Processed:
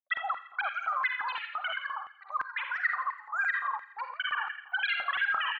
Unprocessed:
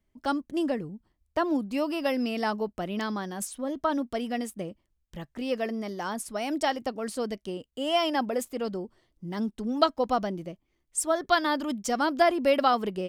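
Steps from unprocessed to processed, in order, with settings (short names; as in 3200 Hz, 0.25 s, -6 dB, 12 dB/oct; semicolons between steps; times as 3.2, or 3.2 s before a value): formant sharpening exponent 3; BPF 650–2500 Hz; feedback echo 0.197 s, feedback 54%, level -11.5 dB; reverb RT60 0.90 s, pre-delay 91 ms, DRR 6 dB; speed mistake 33 rpm record played at 78 rpm; air absorption 430 m; limiter -26 dBFS, peak gain reduction 10 dB; LFO high-pass square 2.9 Hz 890–1900 Hz; gain +1.5 dB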